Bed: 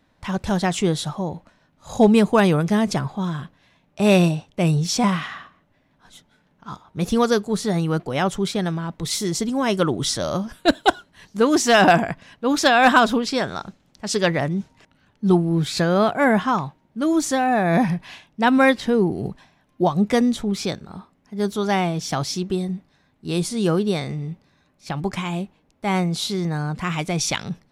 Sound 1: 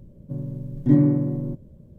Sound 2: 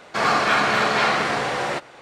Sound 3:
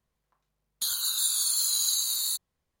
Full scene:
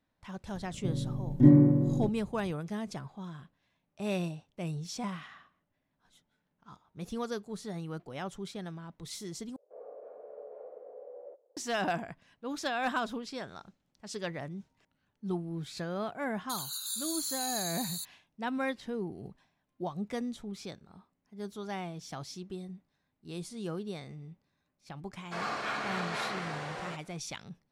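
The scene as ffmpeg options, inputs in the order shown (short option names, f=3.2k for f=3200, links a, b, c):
-filter_complex "[2:a]asplit=2[a][b];[0:a]volume=-17.5dB[c];[1:a]aresample=32000,aresample=44100[d];[a]asuperpass=centerf=510:order=4:qfactor=3.6[e];[c]asplit=2[f][g];[f]atrim=end=9.564[h];[e]atrim=end=2.01,asetpts=PTS-STARTPTS,volume=-15dB[i];[g]atrim=start=11.566[j];[d]atrim=end=1.98,asetpts=PTS-STARTPTS,volume=-2dB,afade=t=in:d=0.004:c=hsin,afade=t=out:st=1.976:d=0.004:c=hsin,adelay=540[k];[3:a]atrim=end=2.8,asetpts=PTS-STARTPTS,volume=-10dB,afade=t=in:d=0.004:c=hsin,afade=t=out:st=2.796:d=0.004:c=hsin,adelay=15680[l];[b]atrim=end=2.01,asetpts=PTS-STARTPTS,volume=-16dB,afade=t=in:d=0.004:c=hsin,afade=t=out:st=2.006:d=0.004:c=hsin,adelay=25170[m];[h][i]acrossfade=d=0.004:c1=hsin:c2=hsin[n];[n][j]acrossfade=d=0.004:c1=hsin:c2=hsin[o];[o][k][l][m]amix=inputs=4:normalize=0"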